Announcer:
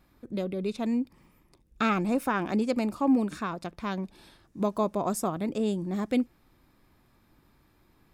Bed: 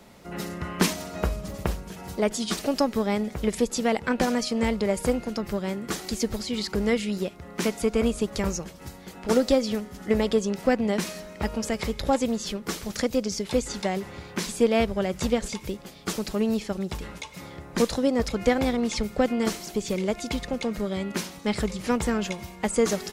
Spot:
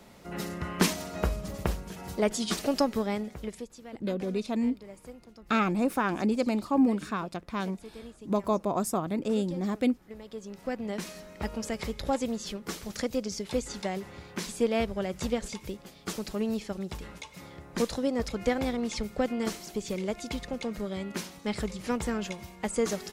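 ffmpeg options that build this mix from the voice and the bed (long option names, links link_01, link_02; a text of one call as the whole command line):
ffmpeg -i stem1.wav -i stem2.wav -filter_complex "[0:a]adelay=3700,volume=0dB[link_01];[1:a]volume=14.5dB,afade=type=out:start_time=2.79:duration=0.93:silence=0.1,afade=type=in:start_time=10.24:duration=1.12:silence=0.149624[link_02];[link_01][link_02]amix=inputs=2:normalize=0" out.wav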